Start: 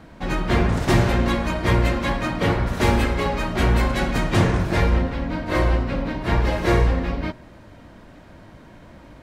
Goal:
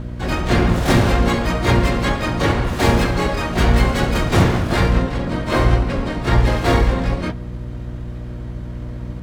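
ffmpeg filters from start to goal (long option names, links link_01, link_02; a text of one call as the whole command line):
ffmpeg -i in.wav -filter_complex "[0:a]aeval=exprs='val(0)+0.0282*(sin(2*PI*60*n/s)+sin(2*PI*2*60*n/s)/2+sin(2*PI*3*60*n/s)/3+sin(2*PI*4*60*n/s)/4+sin(2*PI*5*60*n/s)/5)':channel_layout=same,asplit=3[link_01][link_02][link_03];[link_02]asetrate=33038,aresample=44100,atempo=1.33484,volume=-5dB[link_04];[link_03]asetrate=88200,aresample=44100,atempo=0.5,volume=-6dB[link_05];[link_01][link_04][link_05]amix=inputs=3:normalize=0,volume=1.5dB" out.wav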